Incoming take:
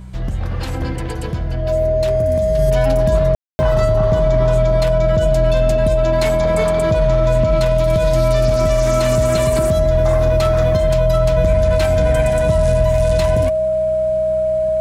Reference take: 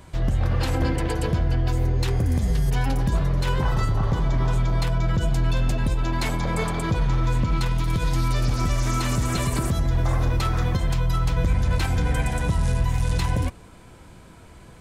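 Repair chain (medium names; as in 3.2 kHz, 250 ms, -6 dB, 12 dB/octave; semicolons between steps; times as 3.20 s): de-hum 62.3 Hz, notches 3; band-stop 630 Hz, Q 30; room tone fill 3.35–3.59 s; gain correction -4.5 dB, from 2.59 s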